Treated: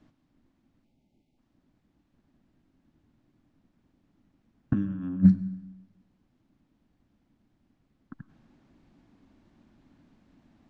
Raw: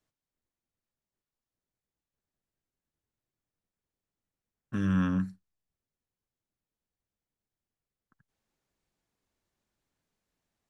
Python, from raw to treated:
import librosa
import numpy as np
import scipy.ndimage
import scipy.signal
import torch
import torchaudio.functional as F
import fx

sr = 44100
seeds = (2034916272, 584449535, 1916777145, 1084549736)

y = scipy.signal.sosfilt(scipy.signal.butter(2, 4000.0, 'lowpass', fs=sr, output='sos'), x)
y = fx.low_shelf_res(y, sr, hz=350.0, db=8.5, q=3.0)
y = fx.spec_erase(y, sr, start_s=0.84, length_s=0.53, low_hz=920.0, high_hz=2000.0)
y = fx.peak_eq(y, sr, hz=560.0, db=9.5, octaves=2.0)
y = fx.over_compress(y, sr, threshold_db=-23.0, ratio=-0.5)
y = fx.rev_plate(y, sr, seeds[0], rt60_s=1.1, hf_ratio=0.9, predelay_ms=85, drr_db=16.0)
y = y * librosa.db_to_amplitude(2.0)